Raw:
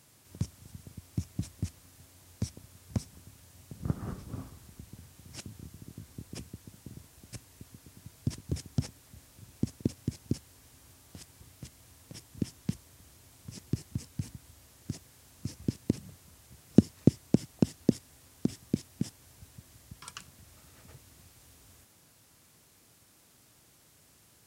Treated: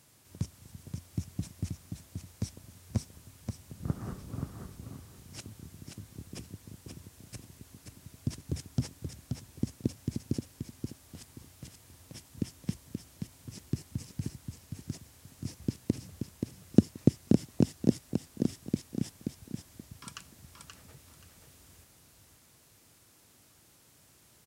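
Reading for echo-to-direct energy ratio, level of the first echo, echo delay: -5.0 dB, -5.5 dB, 529 ms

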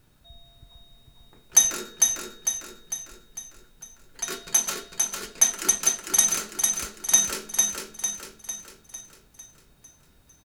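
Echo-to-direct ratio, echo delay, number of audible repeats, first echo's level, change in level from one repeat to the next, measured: -2.5 dB, 451 ms, 6, -3.5 dB, -6.0 dB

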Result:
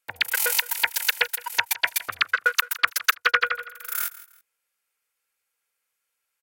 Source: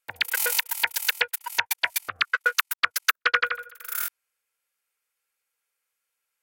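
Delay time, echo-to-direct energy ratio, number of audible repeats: 164 ms, -17.0 dB, 2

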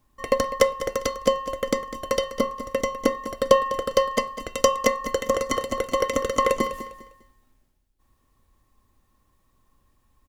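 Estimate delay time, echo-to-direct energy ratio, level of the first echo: 201 ms, -13.0 dB, -13.5 dB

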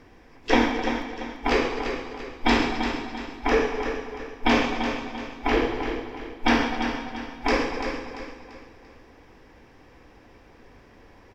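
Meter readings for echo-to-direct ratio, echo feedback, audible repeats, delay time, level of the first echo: -7.5 dB, 39%, 4, 341 ms, -8.0 dB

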